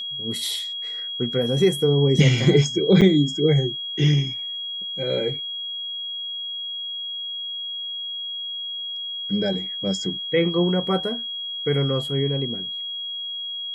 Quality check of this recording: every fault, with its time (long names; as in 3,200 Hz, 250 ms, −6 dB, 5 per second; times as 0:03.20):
whistle 3,300 Hz −28 dBFS
0:03.01–0:03.02: drop-out 7.2 ms